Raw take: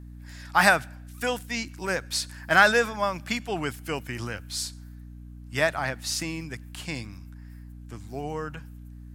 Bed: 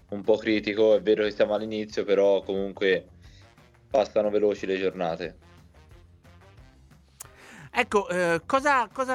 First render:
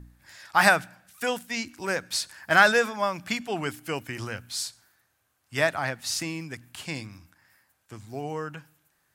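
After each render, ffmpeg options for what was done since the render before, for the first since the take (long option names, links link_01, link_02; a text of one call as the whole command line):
ffmpeg -i in.wav -af "bandreject=frequency=60:width_type=h:width=4,bandreject=frequency=120:width_type=h:width=4,bandreject=frequency=180:width_type=h:width=4,bandreject=frequency=240:width_type=h:width=4,bandreject=frequency=300:width_type=h:width=4" out.wav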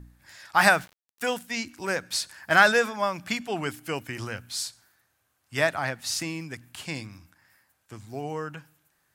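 ffmpeg -i in.wav -filter_complex "[0:a]asettb=1/sr,asplit=3[link_01][link_02][link_03];[link_01]atrim=end=0.574[link_04];[link_02]atrim=start=0.57:end=1.34,asetpts=PTS-STARTPTS,afade=type=in:duration=0.004:curve=qsin,afade=type=out:start_time=0.766:duration=0.004:curve=qsin,aeval=exprs='val(0)*gte(abs(val(0)),0.0075)':channel_layout=same[link_05];[link_03]atrim=start=1.336[link_06];[link_04][link_05]acrossfade=duration=0.004:curve1=hsin:curve2=qsin[link_07];[link_07][link_06]acrossfade=duration=0.004:curve1=qsin:curve2=hsin" out.wav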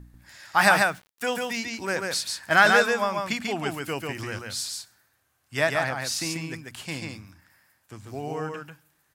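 ffmpeg -i in.wav -af "aecho=1:1:141:0.668" out.wav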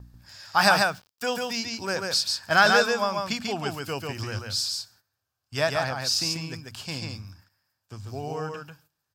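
ffmpeg -i in.wav -af "agate=range=-12dB:threshold=-57dB:ratio=16:detection=peak,equalizer=frequency=100:width_type=o:width=0.33:gain=9,equalizer=frequency=315:width_type=o:width=0.33:gain=-5,equalizer=frequency=2000:width_type=o:width=0.33:gain=-9,equalizer=frequency=5000:width_type=o:width=0.33:gain=9,equalizer=frequency=10000:width_type=o:width=0.33:gain=-7" out.wav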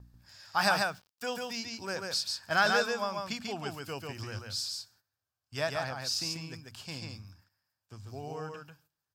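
ffmpeg -i in.wav -af "volume=-7.5dB" out.wav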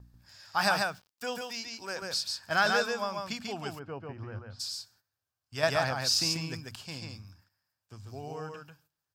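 ffmpeg -i in.wav -filter_complex "[0:a]asettb=1/sr,asplit=3[link_01][link_02][link_03];[link_01]atrim=end=1.414[link_04];[link_02]atrim=start=1.41:end=2.02,asetpts=PTS-STARTPTS,afade=type=in:duration=0.004:curve=qsin,afade=type=out:start_time=0.606:duration=0.004:curve=qsin,highpass=frequency=390:poles=1[link_05];[link_03]atrim=start=2.016[link_06];[link_04][link_05]acrossfade=duration=0.004:curve1=hsin:curve2=qsin[link_07];[link_07][link_06]acrossfade=duration=0.004:curve1=qsin:curve2=hsin,asplit=3[link_08][link_09][link_10];[link_08]afade=type=out:start_time=3.78:duration=0.02[link_11];[link_09]lowpass=1300,afade=type=in:start_time=3.78:duration=0.02,afade=type=out:start_time=4.59:duration=0.02[link_12];[link_10]afade=type=in:start_time=4.59:duration=0.02[link_13];[link_11][link_12][link_13]amix=inputs=3:normalize=0,asettb=1/sr,asplit=3[link_14][link_15][link_16];[link_14]atrim=end=5.634[link_17];[link_15]atrim=start=5.63:end=6.76,asetpts=PTS-STARTPTS,afade=type=in:duration=0.004:curve=qsin,afade=type=out:start_time=1.126:duration=0.004:curve=qsin,acontrast=47[link_18];[link_16]atrim=start=6.756[link_19];[link_17][link_18]acrossfade=duration=0.004:curve1=hsin:curve2=qsin[link_20];[link_20][link_19]acrossfade=duration=0.004:curve1=qsin:curve2=hsin" out.wav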